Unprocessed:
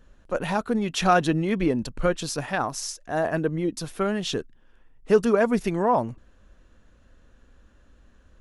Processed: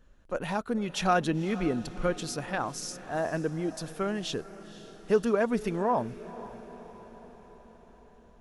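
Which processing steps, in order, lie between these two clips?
echo that smears into a reverb 508 ms, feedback 59%, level -16 dB; trim -5.5 dB

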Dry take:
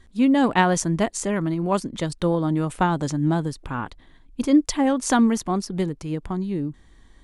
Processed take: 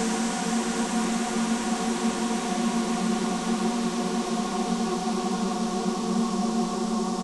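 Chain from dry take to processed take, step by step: painted sound rise, 4.82–5.33 s, 210–9100 Hz -25 dBFS; echo from a far wall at 41 m, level -7 dB; Paulstretch 46×, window 0.50 s, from 5.40 s; trim -5 dB

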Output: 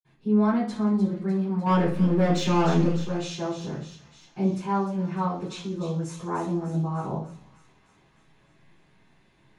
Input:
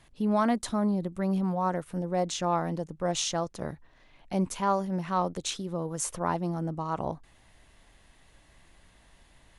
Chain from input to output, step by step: 1.61–2.83 s: waveshaping leveller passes 3; feedback echo behind a high-pass 301 ms, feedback 62%, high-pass 2.6 kHz, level -8.5 dB; reverberation, pre-delay 46 ms; trim +4 dB

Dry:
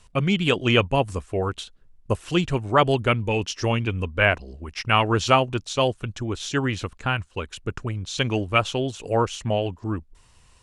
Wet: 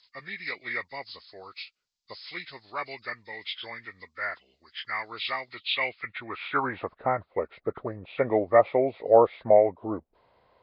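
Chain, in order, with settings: knee-point frequency compression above 1.1 kHz 1.5:1; band-pass sweep 5.5 kHz -> 600 Hz, 5.38–6.98 s; trim +8.5 dB

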